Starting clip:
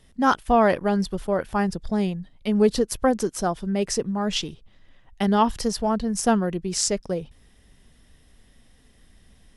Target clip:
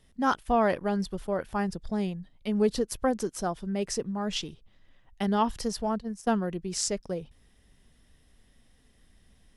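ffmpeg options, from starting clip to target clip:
-filter_complex "[0:a]asplit=3[a][b][c];[a]afade=t=out:st=5.91:d=0.02[d];[b]agate=range=-15dB:threshold=-24dB:ratio=16:detection=peak,afade=t=in:st=5.91:d=0.02,afade=t=out:st=6.35:d=0.02[e];[c]afade=t=in:st=6.35:d=0.02[f];[d][e][f]amix=inputs=3:normalize=0,volume=-6dB"

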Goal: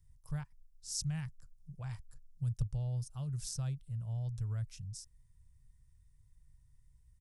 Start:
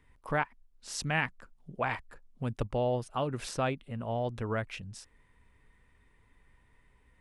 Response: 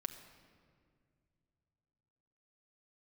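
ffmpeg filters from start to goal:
-af "firequalizer=gain_entry='entry(140,0);entry(240,-27);entry(1500,-24);entry(2300,-26);entry(5400,-1)':delay=0.05:min_phase=1,volume=2dB"

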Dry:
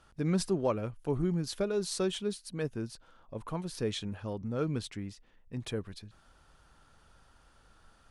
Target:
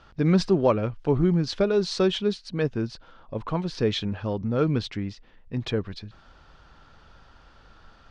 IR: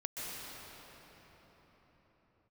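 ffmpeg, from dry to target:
-af "lowpass=f=5.2k:w=0.5412,lowpass=f=5.2k:w=1.3066,volume=9dB"

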